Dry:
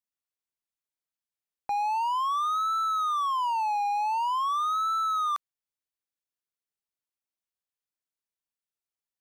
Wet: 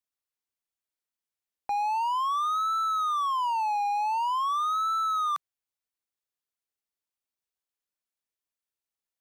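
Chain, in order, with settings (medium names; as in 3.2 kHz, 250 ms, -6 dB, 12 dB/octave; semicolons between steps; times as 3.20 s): peaking EQ 150 Hz -12.5 dB 0.26 oct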